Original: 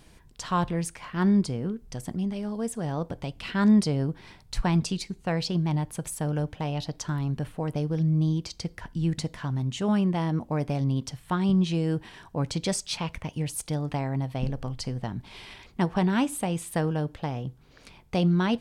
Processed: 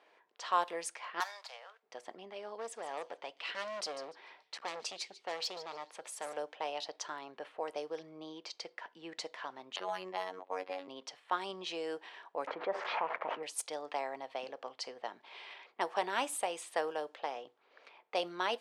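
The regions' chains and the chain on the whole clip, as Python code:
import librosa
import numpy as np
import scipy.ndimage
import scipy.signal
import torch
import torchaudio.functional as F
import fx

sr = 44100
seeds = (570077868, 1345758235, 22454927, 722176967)

y = fx.chain(x, sr, fx.median_filter(points=15),
    fx.steep_highpass(hz=620.0, slope=48),
    fx.high_shelf(hz=2800.0, db=12.0), at=(1.2, 1.83))
y = fx.chain(y, sr, fx.clip_hard(threshold_db=-28.5),
    fx.echo_wet_highpass(ms=147, feedback_pct=34, hz=4300.0, wet_db=-9.0), at=(2.57, 6.37))
y = fx.chain(y, sr, fx.robotise(hz=92.8),
    fx.high_shelf(hz=2900.0, db=8.0),
    fx.resample_linear(factor=6), at=(9.76, 10.88))
y = fx.chain(y, sr, fx.crossing_spikes(level_db=-22.0),
    fx.lowpass(hz=1500.0, slope=24),
    fx.env_flatten(amount_pct=70), at=(12.47, 13.43))
y = scipy.signal.sosfilt(scipy.signal.butter(4, 470.0, 'highpass', fs=sr, output='sos'), y)
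y = fx.notch(y, sr, hz=1500.0, q=23.0)
y = fx.env_lowpass(y, sr, base_hz=2100.0, full_db=-28.5)
y = y * 10.0 ** (-2.5 / 20.0)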